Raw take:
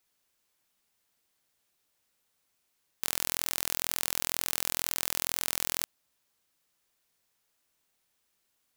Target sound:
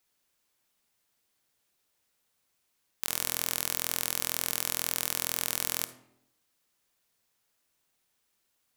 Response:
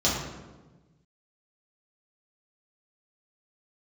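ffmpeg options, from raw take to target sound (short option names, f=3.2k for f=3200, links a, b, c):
-filter_complex "[0:a]asplit=2[a][b];[1:a]atrim=start_sample=2205,asetrate=79380,aresample=44100,adelay=50[c];[b][c]afir=irnorm=-1:irlink=0,volume=-22.5dB[d];[a][d]amix=inputs=2:normalize=0"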